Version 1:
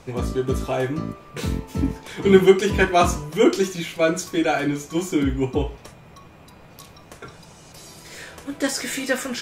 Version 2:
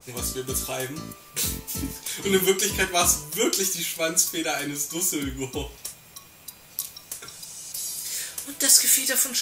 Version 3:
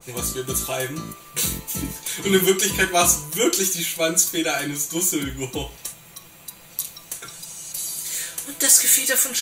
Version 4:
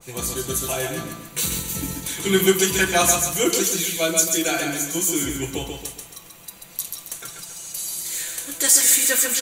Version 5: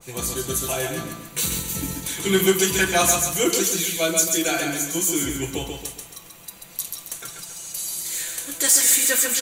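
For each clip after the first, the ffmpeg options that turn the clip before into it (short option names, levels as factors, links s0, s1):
-af "highshelf=f=3600:g=10,crystalizer=i=5.5:c=0,adynamicequalizer=threshold=0.0355:dfrequency=1800:dqfactor=0.7:tfrequency=1800:tqfactor=0.7:attack=5:release=100:ratio=0.375:range=1.5:mode=cutabove:tftype=highshelf,volume=0.335"
-filter_complex "[0:a]bandreject=f=5200:w=6,aecho=1:1:5.9:0.4,asplit=2[s0][s1];[s1]volume=5.96,asoftclip=hard,volume=0.168,volume=0.266[s2];[s0][s2]amix=inputs=2:normalize=0,volume=1.12"
-af "aecho=1:1:136|272|408|544|680:0.562|0.231|0.0945|0.0388|0.0159,volume=0.891"
-af "asoftclip=type=tanh:threshold=0.473"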